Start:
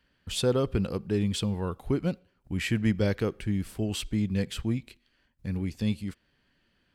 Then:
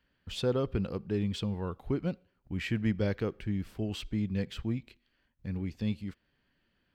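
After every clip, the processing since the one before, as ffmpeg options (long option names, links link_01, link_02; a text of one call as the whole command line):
ffmpeg -i in.wav -af "equalizer=frequency=9700:width_type=o:width=1.1:gain=-13,volume=-4dB" out.wav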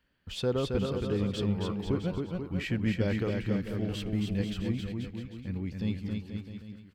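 ffmpeg -i in.wav -af "aecho=1:1:270|486|658.8|797|907.6:0.631|0.398|0.251|0.158|0.1" out.wav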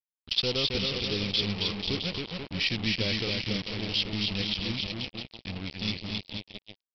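ffmpeg -i in.wav -af "aeval=exprs='if(lt(val(0),0),0.708*val(0),val(0))':channel_layout=same,aresample=11025,acrusher=bits=5:mix=0:aa=0.5,aresample=44100,aexciter=amount=6:drive=6.6:freq=2300,volume=-2dB" out.wav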